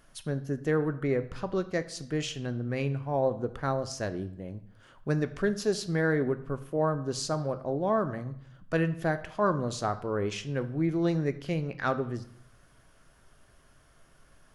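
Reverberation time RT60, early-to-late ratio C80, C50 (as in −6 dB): 0.70 s, 17.5 dB, 14.5 dB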